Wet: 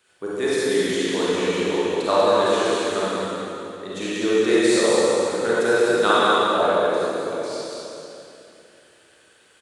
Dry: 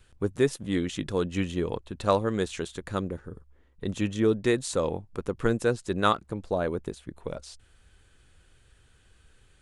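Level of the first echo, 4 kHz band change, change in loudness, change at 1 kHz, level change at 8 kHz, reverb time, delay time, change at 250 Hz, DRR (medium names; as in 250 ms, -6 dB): -2.5 dB, +12.5 dB, +8.5 dB, +10.0 dB, +10.5 dB, 2.8 s, 192 ms, +5.0 dB, -10.5 dB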